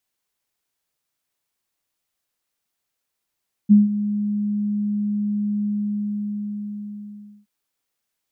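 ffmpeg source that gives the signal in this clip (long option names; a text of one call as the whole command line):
ffmpeg -f lavfi -i "aevalsrc='0.473*sin(2*PI*207*t)':duration=3.77:sample_rate=44100,afade=type=in:duration=0.027,afade=type=out:start_time=0.027:duration=0.164:silence=0.211,afade=type=out:start_time=1.96:duration=1.81" out.wav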